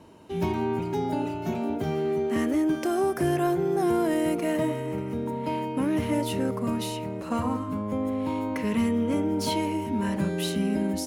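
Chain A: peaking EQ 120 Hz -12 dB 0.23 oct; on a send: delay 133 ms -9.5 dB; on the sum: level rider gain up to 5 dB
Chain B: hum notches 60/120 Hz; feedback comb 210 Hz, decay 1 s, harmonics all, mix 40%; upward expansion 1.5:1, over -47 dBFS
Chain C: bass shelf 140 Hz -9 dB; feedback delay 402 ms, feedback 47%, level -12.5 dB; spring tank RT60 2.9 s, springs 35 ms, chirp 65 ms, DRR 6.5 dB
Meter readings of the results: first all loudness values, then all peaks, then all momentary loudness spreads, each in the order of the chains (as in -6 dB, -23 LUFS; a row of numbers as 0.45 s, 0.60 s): -22.0 LUFS, -33.5 LUFS, -27.5 LUFS; -9.5 dBFS, -20.0 dBFS, -13.5 dBFS; 6 LU, 8 LU, 5 LU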